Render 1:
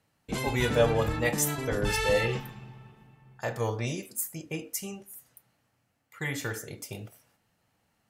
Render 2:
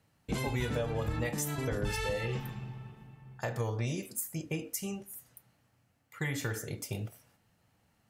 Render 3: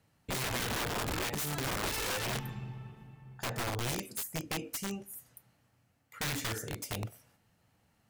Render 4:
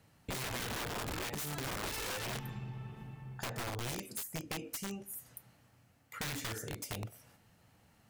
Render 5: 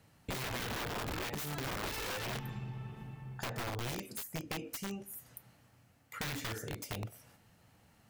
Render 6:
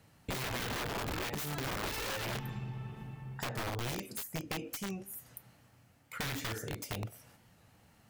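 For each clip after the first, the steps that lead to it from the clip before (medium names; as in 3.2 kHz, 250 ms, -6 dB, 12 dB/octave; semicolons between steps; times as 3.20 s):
compression 6:1, threshold -32 dBFS, peak gain reduction 14 dB; peaking EQ 82 Hz +5.5 dB 2.7 oct
integer overflow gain 29 dB
compression 2.5:1, threshold -47 dBFS, peak gain reduction 10 dB; trim +5 dB
dynamic bell 9 kHz, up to -5 dB, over -53 dBFS, Q 0.79; trim +1 dB
warped record 45 rpm, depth 100 cents; trim +1.5 dB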